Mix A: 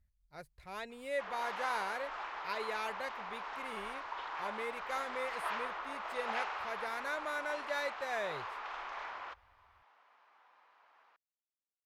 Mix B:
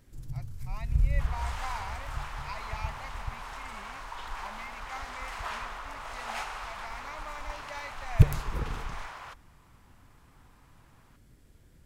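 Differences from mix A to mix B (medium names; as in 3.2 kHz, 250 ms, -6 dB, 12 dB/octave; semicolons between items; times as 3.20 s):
speech: add static phaser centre 2.3 kHz, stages 8; first sound: unmuted; second sound: remove Gaussian low-pass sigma 1.9 samples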